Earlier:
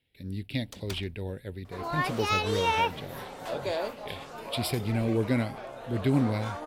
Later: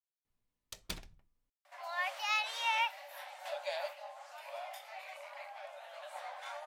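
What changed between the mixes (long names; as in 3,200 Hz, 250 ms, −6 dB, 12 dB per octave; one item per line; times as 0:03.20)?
speech: muted
second sound: add Chebyshev high-pass with heavy ripple 560 Hz, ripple 6 dB
master: add parametric band 1,000 Hz −3.5 dB 2.3 octaves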